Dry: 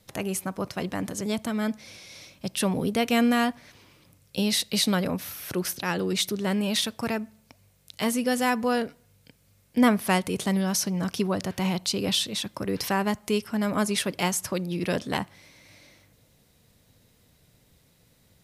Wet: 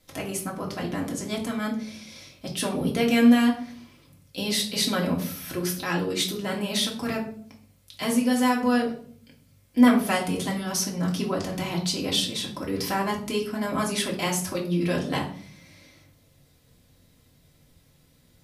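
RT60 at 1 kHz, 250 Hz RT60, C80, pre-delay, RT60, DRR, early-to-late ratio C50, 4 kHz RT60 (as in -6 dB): 0.45 s, 0.85 s, 13.5 dB, 3 ms, 0.55 s, -2.5 dB, 9.0 dB, 0.40 s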